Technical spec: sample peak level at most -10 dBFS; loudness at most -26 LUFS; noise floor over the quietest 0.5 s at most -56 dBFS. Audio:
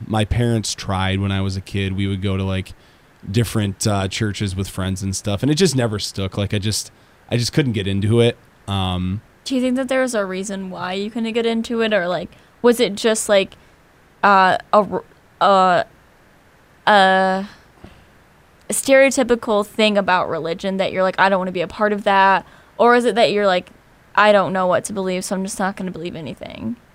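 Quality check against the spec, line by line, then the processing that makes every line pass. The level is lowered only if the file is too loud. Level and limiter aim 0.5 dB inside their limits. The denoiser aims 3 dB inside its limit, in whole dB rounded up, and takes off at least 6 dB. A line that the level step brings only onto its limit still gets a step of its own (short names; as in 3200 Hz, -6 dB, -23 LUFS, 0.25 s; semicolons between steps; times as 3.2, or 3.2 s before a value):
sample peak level -1.5 dBFS: fail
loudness -18.5 LUFS: fail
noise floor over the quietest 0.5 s -51 dBFS: fail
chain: gain -8 dB; limiter -10.5 dBFS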